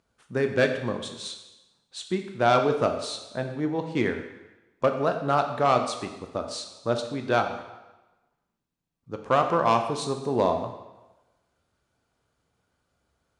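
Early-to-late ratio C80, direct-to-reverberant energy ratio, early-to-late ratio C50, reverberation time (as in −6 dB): 9.5 dB, 5.0 dB, 8.0 dB, 1.1 s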